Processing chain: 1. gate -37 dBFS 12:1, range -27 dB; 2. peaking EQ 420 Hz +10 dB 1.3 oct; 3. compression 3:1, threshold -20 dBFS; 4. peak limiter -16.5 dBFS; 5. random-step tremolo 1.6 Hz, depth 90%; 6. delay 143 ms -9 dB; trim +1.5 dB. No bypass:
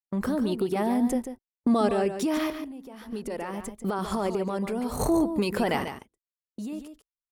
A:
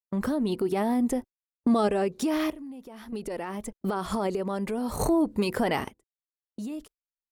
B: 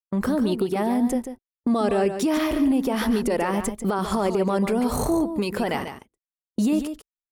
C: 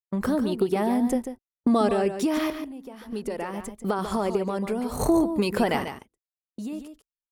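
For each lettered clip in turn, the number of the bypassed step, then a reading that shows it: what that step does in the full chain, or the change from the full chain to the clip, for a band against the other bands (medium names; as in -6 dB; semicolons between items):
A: 6, crest factor change -1.5 dB; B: 5, momentary loudness spread change -6 LU; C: 4, loudness change +2.0 LU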